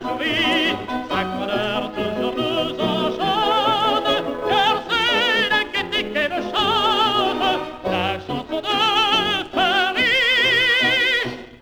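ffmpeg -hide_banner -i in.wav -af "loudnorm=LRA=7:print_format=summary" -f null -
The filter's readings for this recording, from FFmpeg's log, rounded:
Input Integrated:    -18.2 LUFS
Input True Peak:      -5.9 dBTP
Input LRA:             4.1 LU
Input Threshold:     -28.2 LUFS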